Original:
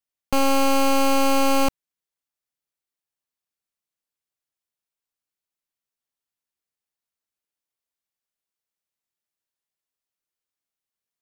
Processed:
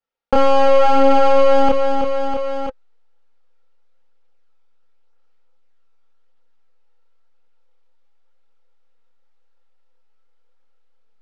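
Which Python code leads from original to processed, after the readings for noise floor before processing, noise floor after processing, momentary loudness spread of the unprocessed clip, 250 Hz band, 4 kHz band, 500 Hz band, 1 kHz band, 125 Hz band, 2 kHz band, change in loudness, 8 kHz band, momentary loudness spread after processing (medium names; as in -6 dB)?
under -85 dBFS, -51 dBFS, 5 LU, +1.0 dB, -1.5 dB, +11.0 dB, +7.0 dB, no reading, +1.0 dB, +5.0 dB, under -10 dB, 11 LU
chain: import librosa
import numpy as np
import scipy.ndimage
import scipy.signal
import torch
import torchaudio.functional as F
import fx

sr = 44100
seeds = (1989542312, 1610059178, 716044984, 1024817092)

p1 = fx.high_shelf(x, sr, hz=3200.0, db=4.0)
p2 = p1 + 0.46 * np.pad(p1, (int(4.3 * sr / 1000.0), 0))[:len(p1)]
p3 = fx.chorus_voices(p2, sr, voices=2, hz=0.47, base_ms=29, depth_ms=2.4, mix_pct=50)
p4 = fx.small_body(p3, sr, hz=(520.0, 830.0, 1300.0), ring_ms=55, db=17)
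p5 = fx.backlash(p4, sr, play_db=-19.5)
p6 = p4 + (p5 * librosa.db_to_amplitude(-7.0))
p7 = fx.power_curve(p6, sr, exponent=1.4)
p8 = fx.air_absorb(p7, sr, metres=220.0)
p9 = fx.echo_feedback(p8, sr, ms=326, feedback_pct=30, wet_db=-16.0)
p10 = fx.env_flatten(p9, sr, amount_pct=70)
y = p10 * librosa.db_to_amplitude(-1.0)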